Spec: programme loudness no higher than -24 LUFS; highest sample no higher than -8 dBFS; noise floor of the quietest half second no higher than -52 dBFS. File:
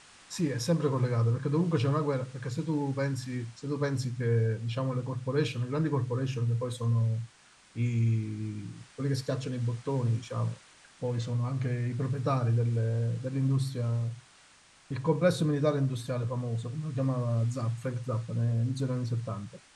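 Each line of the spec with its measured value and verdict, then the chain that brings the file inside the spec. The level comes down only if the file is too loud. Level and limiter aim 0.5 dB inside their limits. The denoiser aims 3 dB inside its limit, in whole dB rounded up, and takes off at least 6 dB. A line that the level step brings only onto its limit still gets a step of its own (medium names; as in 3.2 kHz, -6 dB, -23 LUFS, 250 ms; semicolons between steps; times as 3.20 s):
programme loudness -31.0 LUFS: pass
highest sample -13.5 dBFS: pass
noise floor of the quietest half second -59 dBFS: pass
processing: none needed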